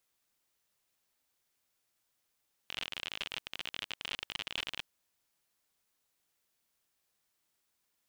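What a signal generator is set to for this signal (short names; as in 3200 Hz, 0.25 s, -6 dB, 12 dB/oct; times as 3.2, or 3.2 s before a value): random clicks 51/s -21 dBFS 2.14 s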